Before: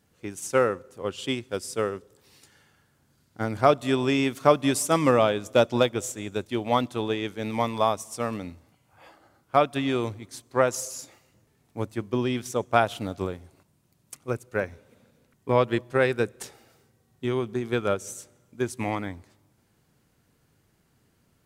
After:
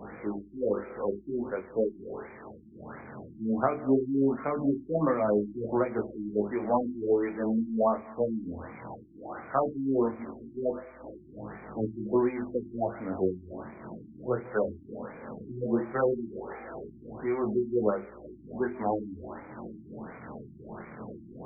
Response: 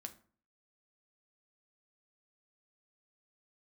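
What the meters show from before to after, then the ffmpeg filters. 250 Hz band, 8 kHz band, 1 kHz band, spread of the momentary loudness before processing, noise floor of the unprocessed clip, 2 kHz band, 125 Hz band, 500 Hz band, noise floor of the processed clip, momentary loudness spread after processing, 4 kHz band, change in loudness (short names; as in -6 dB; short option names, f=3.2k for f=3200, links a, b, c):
-0.5 dB, under -40 dB, -7.0 dB, 15 LU, -67 dBFS, -11.0 dB, -7.5 dB, -3.5 dB, -51 dBFS, 17 LU, under -40 dB, -4.5 dB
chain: -filter_complex "[0:a]aeval=exprs='val(0)+0.5*0.0266*sgn(val(0))':c=same,acrossover=split=170 7900:gain=0.178 1 0.0794[a][b][c];[a][b][c]amix=inputs=3:normalize=0,bandreject=f=50:t=h:w=6,bandreject=f=100:t=h:w=6,bandreject=f=150:t=h:w=6,bandreject=f=200:t=h:w=6,bandreject=f=250:t=h:w=6,bandreject=f=300:t=h:w=6,bandreject=f=350:t=h:w=6,bandreject=f=400:t=h:w=6,bandreject=f=450:t=h:w=6,acrossover=split=300|3000[d][e][f];[e]acompressor=threshold=-23dB:ratio=5[g];[d][g][f]amix=inputs=3:normalize=0,aeval=exprs='val(0)+0.000891*(sin(2*PI*60*n/s)+sin(2*PI*2*60*n/s)/2+sin(2*PI*3*60*n/s)/3+sin(2*PI*4*60*n/s)/4+sin(2*PI*5*60*n/s)/5)':c=same,flanger=delay=19:depth=4.5:speed=0.17,tremolo=f=2.8:d=0.56,asplit=2[h][i];[1:a]atrim=start_sample=2205,lowpass=5.3k[j];[i][j]afir=irnorm=-1:irlink=0,volume=3dB[k];[h][k]amix=inputs=2:normalize=0,afftfilt=real='re*lt(b*sr/1024,360*pow(2500/360,0.5+0.5*sin(2*PI*1.4*pts/sr)))':imag='im*lt(b*sr/1024,360*pow(2500/360,0.5+0.5*sin(2*PI*1.4*pts/sr)))':win_size=1024:overlap=0.75"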